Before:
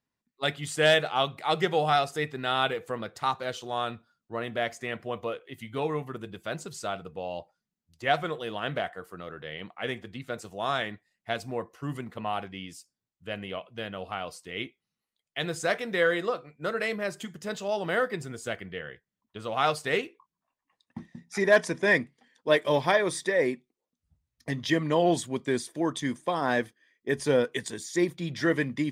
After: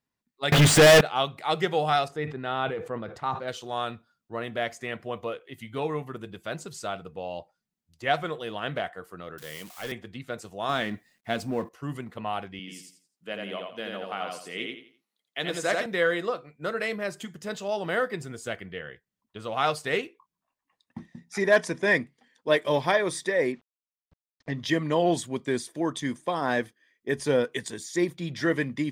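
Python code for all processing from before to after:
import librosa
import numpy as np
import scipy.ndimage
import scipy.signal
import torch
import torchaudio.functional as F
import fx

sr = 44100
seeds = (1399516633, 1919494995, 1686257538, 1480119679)

y = fx.chain(x, sr, fx.zero_step(step_db=-30.0),
    fx.lowpass(hz=2400.0, slope=6),
    fx.leveller(passes=5), at=(0.52, 1.01))
y = fx.chain(y, sr, fx.lowpass(hz=1300.0, slope=6),
    fx.sustainer(db_per_s=97.0), at=(2.08, 3.48))
y = fx.chain(y, sr, fx.crossing_spikes(level_db=-32.5),
    fx.highpass(hz=120.0, slope=24),
    fx.tube_stage(drive_db=27.0, bias=0.4), at=(9.38, 9.92))
y = fx.chain(y, sr, fx.law_mismatch(coded='mu'),
    fx.peak_eq(hz=240.0, db=7.5, octaves=0.87), at=(10.69, 11.69))
y = fx.chain(y, sr, fx.highpass(hz=170.0, slope=24),
    fx.echo_feedback(ms=85, feedback_pct=30, wet_db=-3.0), at=(12.59, 15.86))
y = fx.chain(y, sr, fx.quant_dither(seeds[0], bits=10, dither='none'),
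    fx.air_absorb(metres=150.0), at=(23.52, 24.6))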